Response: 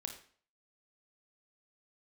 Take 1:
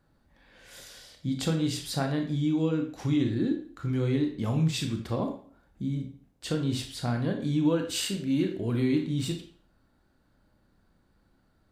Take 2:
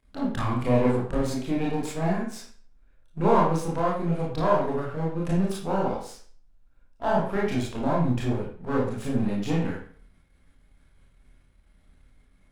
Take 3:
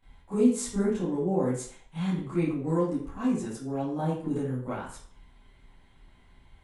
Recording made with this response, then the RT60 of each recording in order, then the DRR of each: 1; 0.50, 0.50, 0.50 seconds; 4.0, −5.0, −14.0 decibels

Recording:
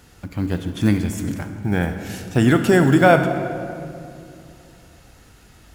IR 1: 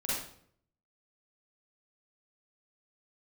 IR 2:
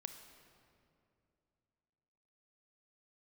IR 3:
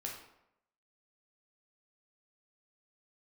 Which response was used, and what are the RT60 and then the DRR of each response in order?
2; 0.60, 2.7, 0.80 seconds; −8.5, 7.0, −1.5 decibels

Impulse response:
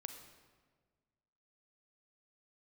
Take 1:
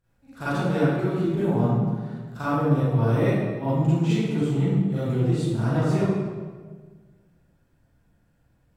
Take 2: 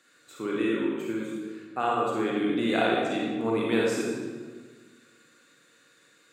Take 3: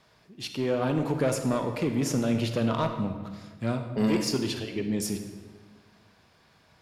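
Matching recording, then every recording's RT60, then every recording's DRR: 3; 1.5, 1.5, 1.5 seconds; −13.5, −4.0, 6.0 decibels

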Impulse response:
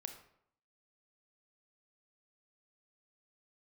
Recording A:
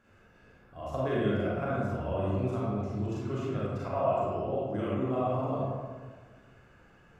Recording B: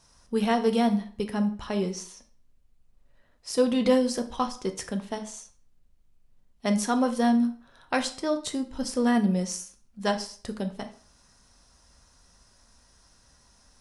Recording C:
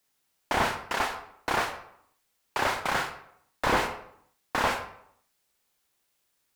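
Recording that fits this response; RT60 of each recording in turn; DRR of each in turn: C; 1.6, 0.45, 0.70 seconds; −8.0, 6.0, 6.0 decibels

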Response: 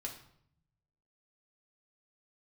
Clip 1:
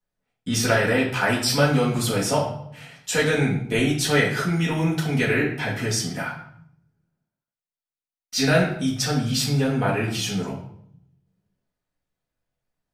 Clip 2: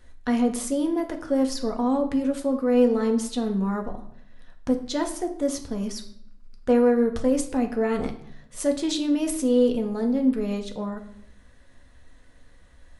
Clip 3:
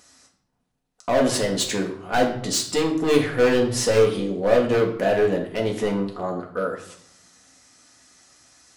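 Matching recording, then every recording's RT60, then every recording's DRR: 3; 0.65, 0.65, 0.65 seconds; −6.5, 3.5, −0.5 decibels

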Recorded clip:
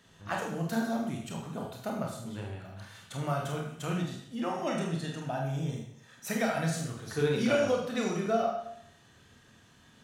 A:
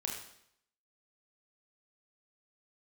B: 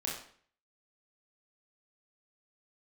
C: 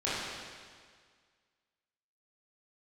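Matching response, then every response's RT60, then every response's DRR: A; 0.70, 0.50, 1.8 seconds; −1.0, −4.0, −10.5 decibels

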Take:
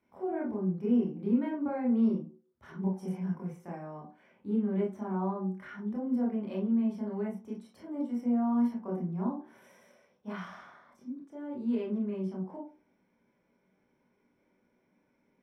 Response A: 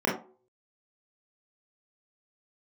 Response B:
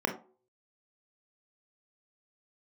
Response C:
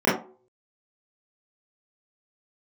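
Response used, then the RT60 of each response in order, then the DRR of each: A; non-exponential decay, non-exponential decay, non-exponential decay; −5.0, 3.0, −11.5 decibels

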